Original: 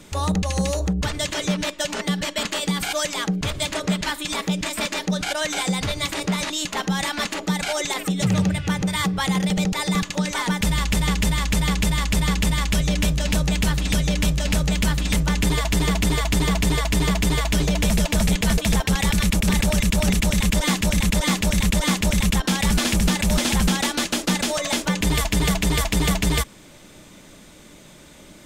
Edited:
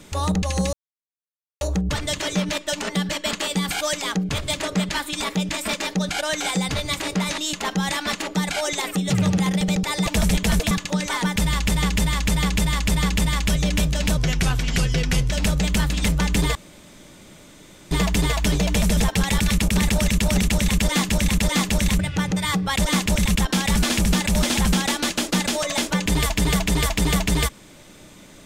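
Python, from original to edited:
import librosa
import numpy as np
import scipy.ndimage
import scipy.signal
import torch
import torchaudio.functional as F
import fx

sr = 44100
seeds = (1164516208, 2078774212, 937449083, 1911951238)

y = fx.edit(x, sr, fx.insert_silence(at_s=0.73, length_s=0.88),
    fx.move(start_s=8.5, length_s=0.77, to_s=21.71),
    fx.speed_span(start_s=13.42, length_s=0.97, speed=0.85),
    fx.room_tone_fill(start_s=15.63, length_s=1.36),
    fx.move(start_s=18.05, length_s=0.64, to_s=9.96), tone=tone)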